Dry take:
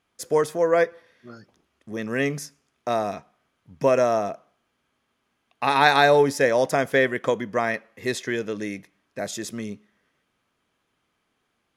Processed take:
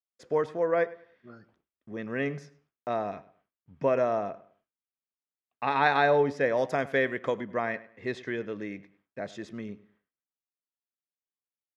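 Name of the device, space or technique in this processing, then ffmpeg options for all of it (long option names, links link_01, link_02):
hearing-loss simulation: -filter_complex "[0:a]asettb=1/sr,asplit=3[link_01][link_02][link_03];[link_01]atrim=end=6.574[link_04];[link_02]atrim=start=6.57:end=7.41,asetpts=PTS-STARTPTS,afade=type=in:duration=0.004:curve=qsin,afade=type=out:start_time=0.836:duration=0.004:curve=qsin,aemphasis=mode=production:type=50fm[link_05];[link_03]atrim=start=7.406[link_06];[link_04][link_05]acrossfade=duration=0.004:curve1=hsin:curve2=qsin[link_07];[link_07][link_06]acrossfade=duration=0.004:curve1=qsin:curve2=hsin,lowpass=2800,asplit=2[link_08][link_09];[link_09]adelay=102,lowpass=frequency=4000:poles=1,volume=-18.5dB,asplit=2[link_10][link_11];[link_11]adelay=102,lowpass=frequency=4000:poles=1,volume=0.3,asplit=2[link_12][link_13];[link_13]adelay=102,lowpass=frequency=4000:poles=1,volume=0.3[link_14];[link_08][link_10][link_12][link_14]amix=inputs=4:normalize=0,agate=range=-33dB:threshold=-56dB:ratio=3:detection=peak,volume=-6dB"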